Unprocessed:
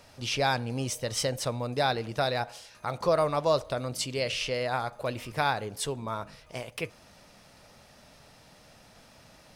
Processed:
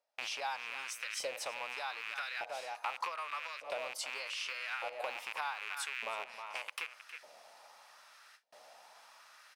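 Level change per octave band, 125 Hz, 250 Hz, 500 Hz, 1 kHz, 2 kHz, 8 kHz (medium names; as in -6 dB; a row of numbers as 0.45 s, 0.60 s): under -40 dB, -30.0 dB, -16.0 dB, -9.0 dB, -3.5 dB, -9.0 dB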